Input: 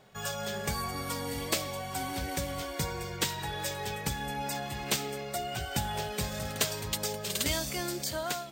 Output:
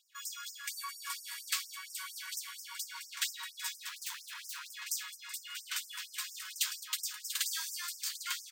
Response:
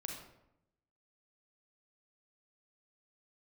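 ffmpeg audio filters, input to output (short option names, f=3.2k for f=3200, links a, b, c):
-filter_complex "[0:a]asplit=2[a][b];[b]adelay=800,lowpass=f=4.3k:p=1,volume=-4.5dB,asplit=2[c][d];[d]adelay=800,lowpass=f=4.3k:p=1,volume=0.47,asplit=2[e][f];[f]adelay=800,lowpass=f=4.3k:p=1,volume=0.47,asplit=2[g][h];[h]adelay=800,lowpass=f=4.3k:p=1,volume=0.47,asplit=2[i][j];[j]adelay=800,lowpass=f=4.3k:p=1,volume=0.47,asplit=2[k][l];[l]adelay=800,lowpass=f=4.3k:p=1,volume=0.47[m];[a][c][e][g][i][k][m]amix=inputs=7:normalize=0,asettb=1/sr,asplit=3[n][o][p];[n]atrim=end=3.894[q];[o]atrim=start=3.89:end=4.72,asetpts=PTS-STARTPTS,afade=t=in:d=0.004:c=qsin,afade=t=out:st=0.826:d=0.004:c=qsin,aeval=exprs='abs(val(0))':c=same[r];[p]atrim=start=4.716[s];[q][r]acrossfade=d=0.004:c1=hsin:c2=qsin[t];[t][s]acrossfade=d=0.004:c1=qsin:c2=hsin,afftfilt=real='re*gte(b*sr/1024,890*pow(5100/890,0.5+0.5*sin(2*PI*4.3*pts/sr)))':imag='im*gte(b*sr/1024,890*pow(5100/890,0.5+0.5*sin(2*PI*4.3*pts/sr)))':win_size=1024:overlap=0.75,volume=-2.5dB"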